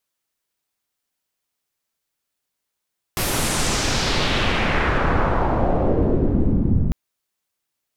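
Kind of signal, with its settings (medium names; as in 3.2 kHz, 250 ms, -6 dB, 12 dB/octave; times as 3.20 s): swept filtered noise pink, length 3.75 s lowpass, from 14 kHz, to 160 Hz, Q 1.6, exponential, gain ramp +7 dB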